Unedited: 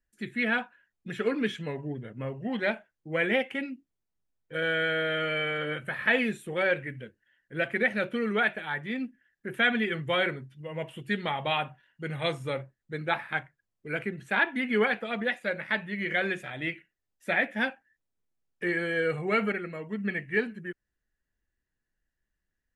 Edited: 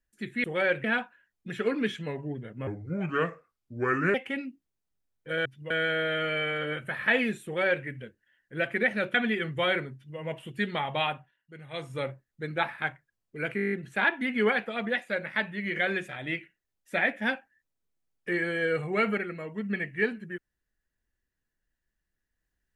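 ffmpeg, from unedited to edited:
-filter_complex "[0:a]asplit=18[s0][s1][s2][s3][s4][s5][s6][s7][s8][s9][s10][s11][s12][s13][s14][s15][s16][s17];[s0]atrim=end=0.442[s18];[s1]atrim=start=6.448:end=6.852[s19];[s2]atrim=start=0.438:end=2.274[s20];[s3]atrim=start=2.27:end=3.39,asetpts=PTS-STARTPTS,asetrate=33516,aresample=44100,atrim=end_sample=64989,asetpts=PTS-STARTPTS[s21];[s4]atrim=start=3.386:end=4.702[s22];[s5]atrim=start=10.438:end=10.692[s23];[s6]atrim=start=4.698:end=8.142[s24];[s7]atrim=start=9.648:end=11.89,asetpts=PTS-STARTPTS,afade=t=out:st=1.902:d=0.34:silence=0.251189[s25];[s8]atrim=start=11.89:end=12.2,asetpts=PTS-STARTPTS,volume=0.251[s26];[s9]atrim=start=12.2:end=14.092,asetpts=PTS-STARTPTS,afade=t=in:d=0.34:silence=0.251189[s27];[s10]atrim=start=14.068:end=14.092[s28];[s11]atrim=start=14.068:end=14.092[s29];[s12]atrim=start=14.068:end=14.092[s30];[s13]atrim=start=14.068:end=14.092[s31];[s14]atrim=start=14.068:end=14.092[s32];[s15]atrim=start=14.068:end=14.092[s33];[s16]atrim=start=14.068:end=14.092[s34];[s17]atrim=start=14.068[s35];[s18][s19]acrossfade=d=0.004:c1=hsin:c2=hsin[s36];[s36][s20]acrossfade=d=0.004:c1=hsin:c2=hsin[s37];[s37][s21]acrossfade=d=0.004:c1=hsin:c2=hsin[s38];[s38][s22]acrossfade=d=0.004:c1=hsin:c2=hsin[s39];[s39][s23]acrossfade=d=0.004:c1=hsin:c2=hsin[s40];[s40][s24]acrossfade=d=0.004:c1=hsin:c2=hsin[s41];[s25][s26][s27]concat=n=3:v=0:a=1[s42];[s41][s42]acrossfade=d=0.004:c1=hsin:c2=hsin[s43];[s43][s28]acrossfade=d=0.004:c1=hsin:c2=hsin[s44];[s44][s29]acrossfade=d=0.004:c1=hsin:c2=hsin[s45];[s45][s30]acrossfade=d=0.004:c1=hsin:c2=hsin[s46];[s46][s31]acrossfade=d=0.004:c1=hsin:c2=hsin[s47];[s47][s32]acrossfade=d=0.004:c1=hsin:c2=hsin[s48];[s48][s33]acrossfade=d=0.004:c1=hsin:c2=hsin[s49];[s49][s34]acrossfade=d=0.004:c1=hsin:c2=hsin[s50];[s50][s35]acrossfade=d=0.004:c1=hsin:c2=hsin"

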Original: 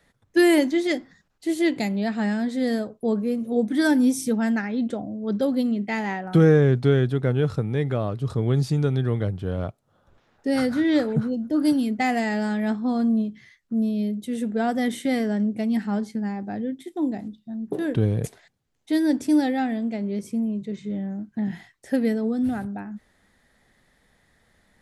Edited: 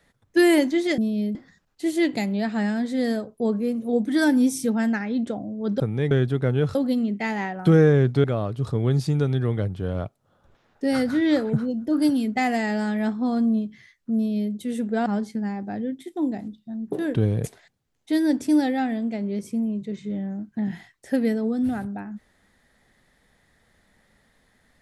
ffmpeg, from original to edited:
-filter_complex "[0:a]asplit=8[s0][s1][s2][s3][s4][s5][s6][s7];[s0]atrim=end=0.982[s8];[s1]atrim=start=13.788:end=14.162[s9];[s2]atrim=start=0.978:end=5.432[s10];[s3]atrim=start=7.558:end=7.872[s11];[s4]atrim=start=6.918:end=7.562[s12];[s5]atrim=start=5.428:end=6.922[s13];[s6]atrim=start=7.868:end=14.692[s14];[s7]atrim=start=15.858[s15];[s8][s9]acrossfade=d=0.004:c1=hsin:c2=hsin[s16];[s16][s10]acrossfade=d=0.004:c1=hsin:c2=hsin[s17];[s17][s11]acrossfade=d=0.004:c1=hsin:c2=hsin[s18];[s18][s12]acrossfade=d=0.004:c1=hsin:c2=hsin[s19];[s19][s13]acrossfade=d=0.004:c1=hsin:c2=hsin[s20];[s20][s14]acrossfade=d=0.004:c1=hsin:c2=hsin[s21];[s21][s15]acrossfade=d=0.004:c1=hsin:c2=hsin"

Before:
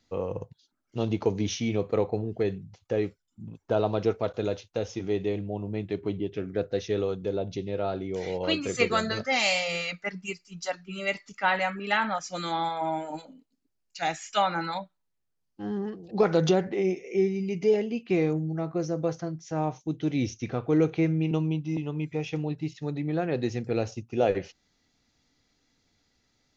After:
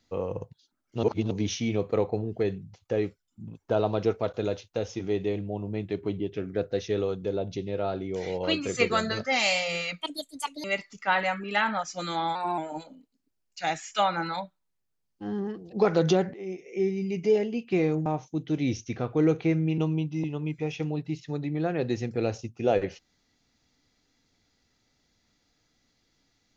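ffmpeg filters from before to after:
-filter_complex "[0:a]asplit=9[s0][s1][s2][s3][s4][s5][s6][s7][s8];[s0]atrim=end=1.032[s9];[s1]atrim=start=1.028:end=1.312,asetpts=PTS-STARTPTS,areverse[s10];[s2]atrim=start=1.308:end=10.014[s11];[s3]atrim=start=10.01:end=11,asetpts=PTS-STARTPTS,asetrate=69237,aresample=44100,atrim=end_sample=27808,asetpts=PTS-STARTPTS[s12];[s4]atrim=start=10.996:end=12.714[s13];[s5]atrim=start=12.71:end=12.96,asetpts=PTS-STARTPTS,asetrate=48510,aresample=44100[s14];[s6]atrim=start=12.956:end=16.72,asetpts=PTS-STARTPTS,afade=t=out:st=3.76:d=0.004:c=hsin:silence=0.158489[s15];[s7]atrim=start=16.72:end=18.442,asetpts=PTS-STARTPTS,afade=t=in:d=0.68:silence=0.158489[s16];[s8]atrim=start=19.588[s17];[s9][s10]acrossfade=d=0.004:c1=hsin:c2=hsin[s18];[s18][s11]acrossfade=d=0.004:c1=hsin:c2=hsin[s19];[s19][s12]acrossfade=d=0.004:c1=hsin:c2=hsin[s20];[s20][s13]acrossfade=d=0.004:c1=hsin:c2=hsin[s21];[s21][s14]acrossfade=d=0.004:c1=hsin:c2=hsin[s22];[s15][s16]concat=n=2:v=0:a=1[s23];[s22][s23]acrossfade=d=0.004:c1=hsin:c2=hsin[s24];[s24][s17]acrossfade=d=0.004:c1=hsin:c2=hsin"

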